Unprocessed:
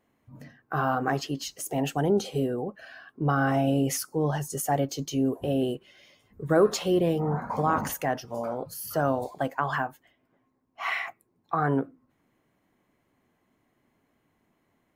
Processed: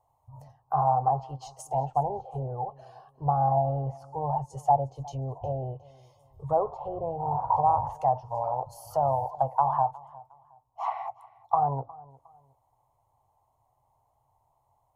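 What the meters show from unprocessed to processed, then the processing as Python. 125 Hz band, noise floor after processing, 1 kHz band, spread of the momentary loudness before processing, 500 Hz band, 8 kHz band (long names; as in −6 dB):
−1.5 dB, −72 dBFS, +5.5 dB, 10 LU, −3.5 dB, below −15 dB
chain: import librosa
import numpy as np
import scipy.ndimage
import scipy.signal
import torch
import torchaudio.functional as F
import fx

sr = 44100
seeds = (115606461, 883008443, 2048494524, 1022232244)

p1 = fx.env_lowpass_down(x, sr, base_hz=850.0, full_db=-22.5)
p2 = fx.curve_eq(p1, sr, hz=(130.0, 190.0, 340.0, 890.0, 1600.0, 8400.0), db=(0, -29, -23, 9, -27, -5))
p3 = p2 + fx.echo_feedback(p2, sr, ms=360, feedback_pct=29, wet_db=-22.0, dry=0)
y = p3 * librosa.db_to_amplitude(4.0)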